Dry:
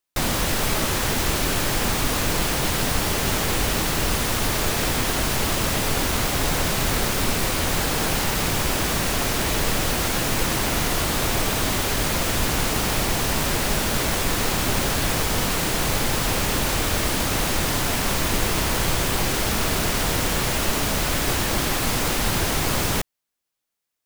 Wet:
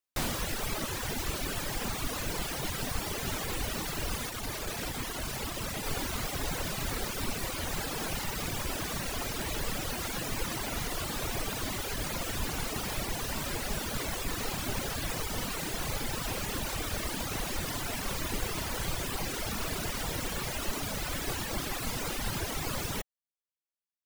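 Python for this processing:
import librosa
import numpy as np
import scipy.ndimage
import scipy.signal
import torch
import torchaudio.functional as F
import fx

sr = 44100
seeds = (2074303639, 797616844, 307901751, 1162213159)

y = fx.tube_stage(x, sr, drive_db=15.0, bias=0.2, at=(4.29, 5.86))
y = fx.dereverb_blind(y, sr, rt60_s=1.9)
y = F.gain(torch.from_numpy(y), -8.0).numpy()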